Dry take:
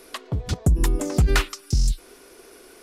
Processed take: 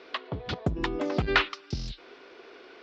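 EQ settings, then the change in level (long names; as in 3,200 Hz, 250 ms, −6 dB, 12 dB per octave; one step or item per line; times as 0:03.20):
high-pass filter 440 Hz 6 dB per octave
inverse Chebyshev low-pass filter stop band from 9,100 Hz, stop band 50 dB
+2.0 dB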